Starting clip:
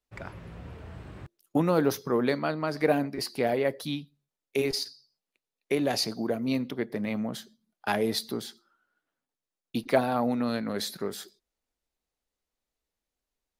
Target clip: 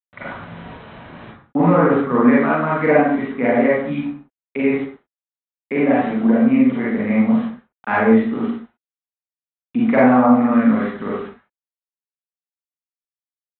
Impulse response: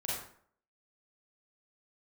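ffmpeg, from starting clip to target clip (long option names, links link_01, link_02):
-filter_complex "[0:a]highpass=190,equalizer=frequency=240:width_type=q:width=4:gain=9,equalizer=frequency=370:width_type=q:width=4:gain=-8,equalizer=frequency=650:width_type=q:width=4:gain=-6,equalizer=frequency=1200:width_type=q:width=4:gain=5,equalizer=frequency=2100:width_type=q:width=4:gain=6,lowpass=frequency=2300:width=0.5412,lowpass=frequency=2300:width=1.3066,aresample=8000,aeval=exprs='val(0)*gte(abs(val(0)),0.00596)':channel_layout=same,aresample=44100,acontrast=47,aemphasis=mode=reproduction:type=75fm[link_01];[1:a]atrim=start_sample=2205,afade=type=out:start_time=0.31:duration=0.01,atrim=end_sample=14112[link_02];[link_01][link_02]afir=irnorm=-1:irlink=0,volume=3dB"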